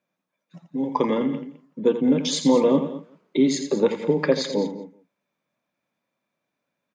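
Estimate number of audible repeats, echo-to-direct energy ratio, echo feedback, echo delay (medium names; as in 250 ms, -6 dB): 5, -7.5 dB, no regular repeats, 84 ms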